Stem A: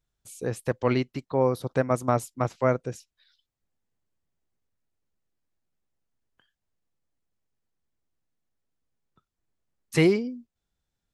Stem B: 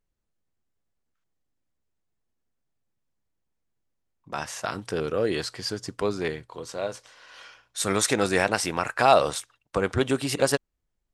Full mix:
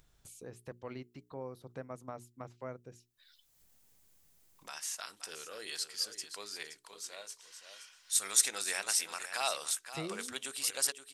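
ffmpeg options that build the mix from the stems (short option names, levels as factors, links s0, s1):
-filter_complex "[0:a]acompressor=threshold=0.00891:ratio=1.5,volume=0.251[s0];[1:a]aderivative,adelay=350,volume=1,asplit=2[s1][s2];[s2]volume=0.282,aecho=0:1:523:1[s3];[s0][s1][s3]amix=inputs=3:normalize=0,acompressor=mode=upward:threshold=0.00447:ratio=2.5,bandreject=f=60:t=h:w=6,bandreject=f=120:t=h:w=6,bandreject=f=180:t=h:w=6,bandreject=f=240:t=h:w=6,bandreject=f=300:t=h:w=6,bandreject=f=360:t=h:w=6,bandreject=f=420:t=h:w=6"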